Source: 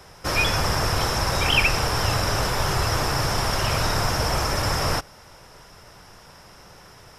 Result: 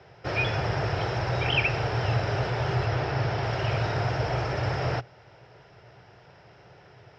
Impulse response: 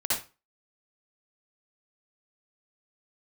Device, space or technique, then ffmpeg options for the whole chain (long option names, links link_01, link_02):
guitar cabinet: -filter_complex "[0:a]highpass=81,equalizer=frequency=120:width_type=q:width=4:gain=10,equalizer=frequency=230:width_type=q:width=4:gain=-8,equalizer=frequency=400:width_type=q:width=4:gain=5,equalizer=frequency=690:width_type=q:width=4:gain=4,equalizer=frequency=1100:width_type=q:width=4:gain=-8,equalizer=frequency=3600:width_type=q:width=4:gain=-4,lowpass=frequency=4000:width=0.5412,lowpass=frequency=4000:width=1.3066,asettb=1/sr,asplit=3[link_01][link_02][link_03];[link_01]atrim=end=2.864[link_04];[link_02]atrim=start=2.86:end=3.43,asetpts=PTS-STARTPTS,afade=type=in:duration=0.004:curve=qsin,afade=type=out:start_time=0.566:duration=0.004:curve=qsin,lowpass=6300[link_05];[link_03]atrim=start=3.426[link_06];[link_04][link_05]acrossfade=duration=0.004:curve1=hsin:curve2=qsin[link_07];[link_07][link_06]acrossfade=duration=0.004:curve1=qsin:curve2=hsin,volume=-4.5dB"